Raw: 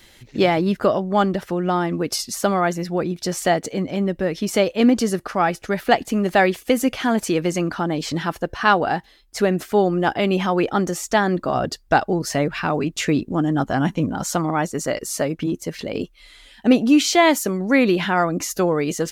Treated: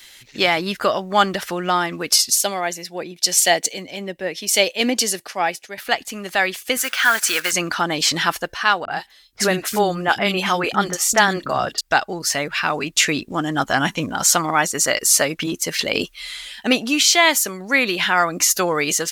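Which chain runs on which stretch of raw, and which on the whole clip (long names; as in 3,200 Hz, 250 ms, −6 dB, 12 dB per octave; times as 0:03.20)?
0:02.30–0:05.78: high-pass filter 290 Hz 6 dB per octave + parametric band 1,300 Hz −12.5 dB 0.68 octaves + multiband upward and downward expander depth 70%
0:06.77–0:07.53: one scale factor per block 5 bits + high-pass filter 830 Hz 6 dB per octave + parametric band 1,500 Hz +11.5 dB 0.61 octaves
0:08.85–0:11.81: parametric band 160 Hz +4 dB 2.3 octaves + three-band delay without the direct sound lows, mids, highs 30/60 ms, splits 300/2,700 Hz
whole clip: tilt shelving filter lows −9.5 dB, about 850 Hz; automatic gain control; level −1 dB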